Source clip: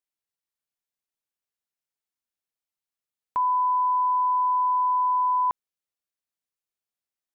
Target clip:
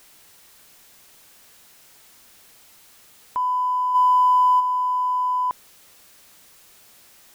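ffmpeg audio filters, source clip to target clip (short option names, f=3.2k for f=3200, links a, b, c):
-filter_complex "[0:a]aeval=exprs='val(0)+0.5*0.00708*sgn(val(0))':c=same,asplit=3[a][b][c];[a]afade=t=out:st=3.94:d=0.02[d];[b]acontrast=56,afade=t=in:st=3.94:d=0.02,afade=t=out:st=4.59:d=0.02[e];[c]afade=t=in:st=4.59:d=0.02[f];[d][e][f]amix=inputs=3:normalize=0"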